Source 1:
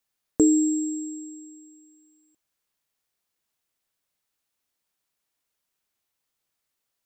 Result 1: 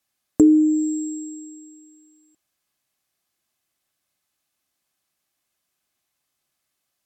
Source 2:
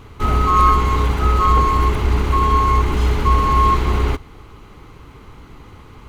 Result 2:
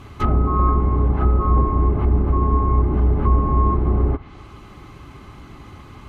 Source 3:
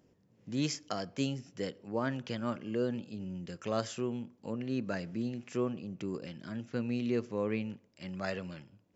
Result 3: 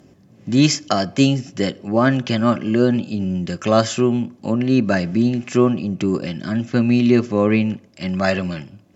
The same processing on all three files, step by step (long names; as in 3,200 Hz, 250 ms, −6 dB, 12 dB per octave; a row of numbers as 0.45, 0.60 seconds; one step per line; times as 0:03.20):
treble cut that deepens with the level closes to 620 Hz, closed at −12.5 dBFS
notch comb filter 470 Hz
loudness normalisation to −19 LKFS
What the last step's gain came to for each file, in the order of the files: +6.0, +2.0, +18.5 decibels